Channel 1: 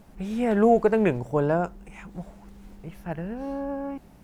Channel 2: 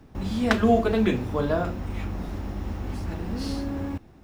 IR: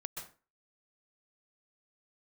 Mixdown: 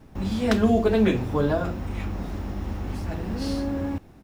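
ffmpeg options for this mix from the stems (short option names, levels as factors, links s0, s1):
-filter_complex "[0:a]volume=0.473[s0];[1:a]acrossover=split=490|3000[s1][s2][s3];[s2]acompressor=threshold=0.0398:ratio=6[s4];[s1][s4][s3]amix=inputs=3:normalize=0,adelay=3.9,volume=1.12[s5];[s0][s5]amix=inputs=2:normalize=0"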